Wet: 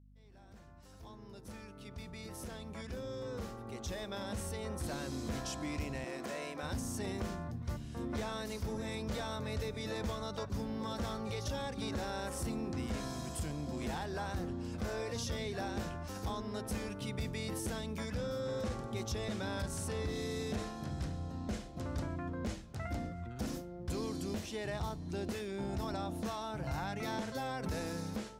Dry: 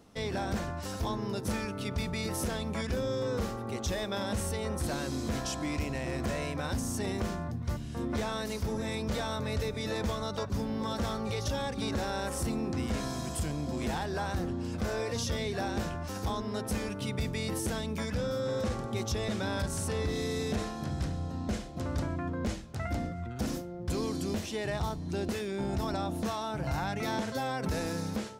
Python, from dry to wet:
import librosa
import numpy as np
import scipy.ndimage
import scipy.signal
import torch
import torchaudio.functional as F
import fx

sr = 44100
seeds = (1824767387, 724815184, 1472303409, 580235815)

y = fx.fade_in_head(x, sr, length_s=5.27)
y = fx.add_hum(y, sr, base_hz=50, snr_db=21)
y = fx.highpass(y, sr, hz=270.0, slope=12, at=(6.04, 6.63))
y = y * librosa.db_to_amplitude(-5.5)